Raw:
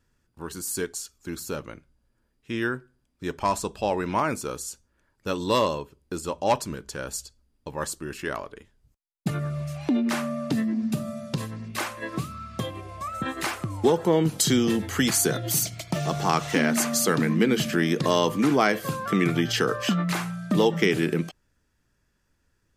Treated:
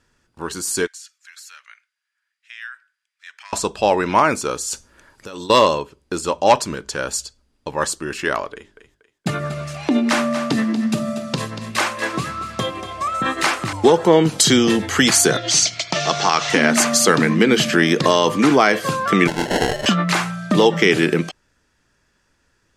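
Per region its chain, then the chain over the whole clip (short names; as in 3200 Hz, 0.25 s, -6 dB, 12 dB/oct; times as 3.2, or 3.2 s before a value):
0.87–3.53 compressor 2:1, threshold -37 dBFS + ladder high-pass 1500 Hz, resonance 45%
4.7–5.5 high shelf 8100 Hz +7.5 dB + negative-ratio compressor -39 dBFS
8.53–13.73 notches 50/100/150/200/250/300/350/400 Hz + thinning echo 0.237 s, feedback 34%, high-pass 310 Hz, level -10 dB
15.37–16.5 LPF 6200 Hz 24 dB/oct + tilt +2.5 dB/oct
19.27–19.86 low shelf 380 Hz -11 dB + sample-rate reducer 1200 Hz
whole clip: LPF 8300 Hz 12 dB/oct; low shelf 270 Hz -9 dB; maximiser +12 dB; gain -1 dB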